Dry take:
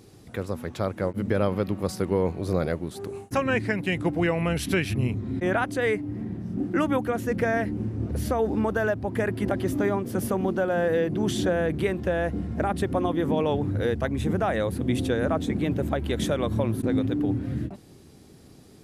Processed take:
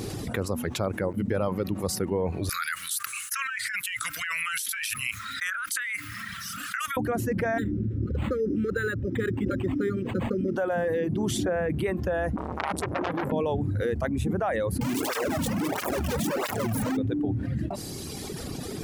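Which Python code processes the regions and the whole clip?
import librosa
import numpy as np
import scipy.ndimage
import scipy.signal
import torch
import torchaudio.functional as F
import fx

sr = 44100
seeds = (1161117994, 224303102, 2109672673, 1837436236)

y = fx.chain(x, sr, fx.ellip_highpass(hz=1300.0, order=4, stop_db=40),
    fx.high_shelf(hz=7500.0, db=12.0),
    fx.over_compress(threshold_db=-39.0, ratio=-1.0), at=(2.49, 6.97))
y = fx.chain(y, sr, fx.brickwall_bandstop(low_hz=570.0, high_hz=1200.0),
    fx.resample_linear(factor=8), at=(7.58, 10.56))
y = fx.chain(y, sr, fx.peak_eq(hz=240.0, db=-7.5, octaves=0.42),
    fx.transformer_sat(knee_hz=2100.0), at=(12.36, 13.32))
y = fx.chain(y, sr, fx.clip_1bit(),
    fx.flanger_cancel(hz=1.5, depth_ms=3.1), at=(14.81, 16.97))
y = fx.dereverb_blind(y, sr, rt60_s=1.8)
y = fx.dynamic_eq(y, sr, hz=3700.0, q=1.1, threshold_db=-48.0, ratio=4.0, max_db=-6)
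y = fx.env_flatten(y, sr, amount_pct=70)
y = y * librosa.db_to_amplitude(-3.0)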